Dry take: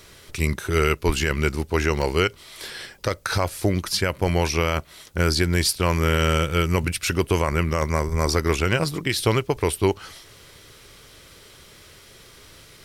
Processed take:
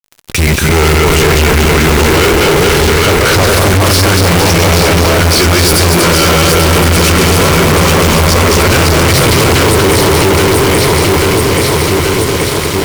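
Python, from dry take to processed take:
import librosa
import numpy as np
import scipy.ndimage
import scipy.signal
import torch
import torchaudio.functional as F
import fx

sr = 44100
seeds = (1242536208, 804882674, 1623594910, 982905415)

p1 = fx.reverse_delay_fb(x, sr, ms=117, feedback_pct=75, wet_db=-4)
p2 = p1 + fx.echo_alternate(p1, sr, ms=416, hz=1100.0, feedback_pct=78, wet_db=-3.0, dry=0)
p3 = fx.mod_noise(p2, sr, seeds[0], snr_db=22)
p4 = fx.fuzz(p3, sr, gain_db=34.0, gate_db=-37.0)
y = p4 * 10.0 ** (6.5 / 20.0)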